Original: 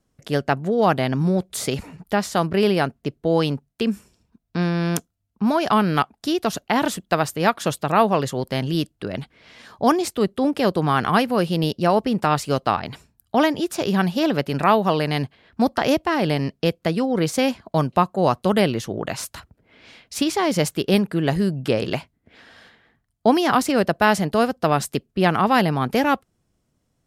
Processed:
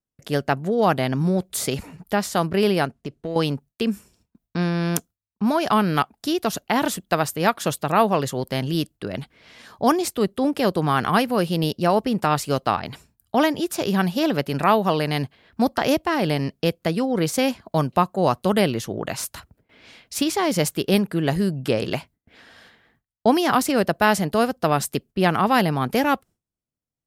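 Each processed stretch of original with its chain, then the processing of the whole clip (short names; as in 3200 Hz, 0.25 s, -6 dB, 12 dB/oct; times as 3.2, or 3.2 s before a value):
2.85–3.36 LPF 9800 Hz + compressor 4:1, threshold -24 dBFS + hard clip -19.5 dBFS
whole clip: gate with hold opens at -50 dBFS; high shelf 11000 Hz +9.5 dB; gain -1 dB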